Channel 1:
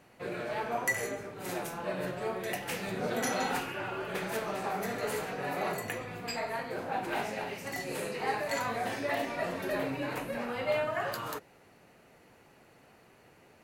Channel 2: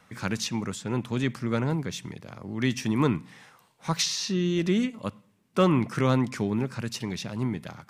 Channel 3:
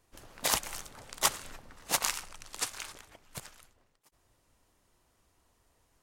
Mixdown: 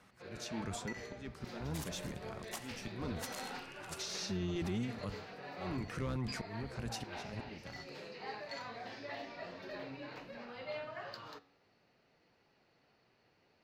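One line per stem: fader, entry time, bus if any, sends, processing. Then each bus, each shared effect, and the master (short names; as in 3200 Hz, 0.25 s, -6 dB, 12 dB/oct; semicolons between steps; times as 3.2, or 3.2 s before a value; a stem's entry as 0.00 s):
-8.5 dB, 0.00 s, no send, resonant high shelf 6900 Hz -14 dB, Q 3
-1.5 dB, 0.00 s, no send, octaver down 1 oct, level -4 dB; one-sided clip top -16 dBFS; auto swell 0.612 s
-11.0 dB, 1.30 s, no send, dry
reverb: off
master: flange 0.48 Hz, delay 4.5 ms, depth 6.4 ms, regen +88%; limiter -30 dBFS, peak gain reduction 9.5 dB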